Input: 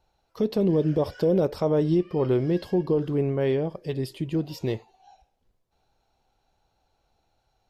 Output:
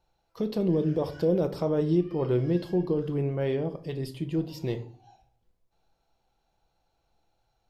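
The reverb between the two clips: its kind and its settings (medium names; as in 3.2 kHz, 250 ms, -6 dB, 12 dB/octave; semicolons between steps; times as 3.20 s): simulated room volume 420 m³, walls furnished, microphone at 0.76 m; trim -4 dB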